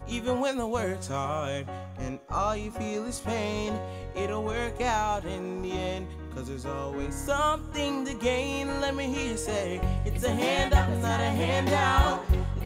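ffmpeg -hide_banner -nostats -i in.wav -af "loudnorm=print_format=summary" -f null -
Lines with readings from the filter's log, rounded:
Input Integrated:    -28.3 LUFS
Input True Peak:      -8.5 dBTP
Input LRA:             5.6 LU
Input Threshold:     -38.4 LUFS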